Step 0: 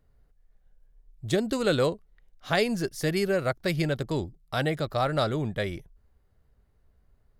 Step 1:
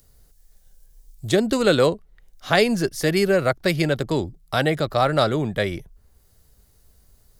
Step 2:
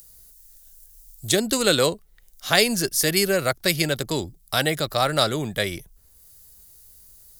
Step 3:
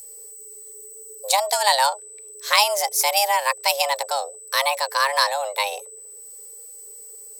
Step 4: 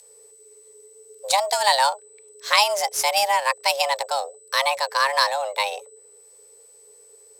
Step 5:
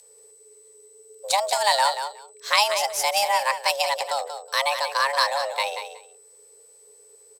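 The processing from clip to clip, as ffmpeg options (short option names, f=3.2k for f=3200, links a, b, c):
-filter_complex "[0:a]acrossover=split=180|4700[a][b][c];[a]alimiter=level_in=10.5dB:limit=-24dB:level=0:latency=1,volume=-10.5dB[d];[c]acompressor=mode=upward:threshold=-53dB:ratio=2.5[e];[d][b][e]amix=inputs=3:normalize=0,volume=7dB"
-af "crystalizer=i=4.5:c=0,volume=-4dB"
-af "aeval=exprs='val(0)+0.01*sin(2*PI*7600*n/s)':c=same,afreqshift=410,volume=1dB"
-af "adynamicsmooth=sensitivity=6:basefreq=4.9k"
-af "aecho=1:1:184|368:0.355|0.0568,volume=-2dB"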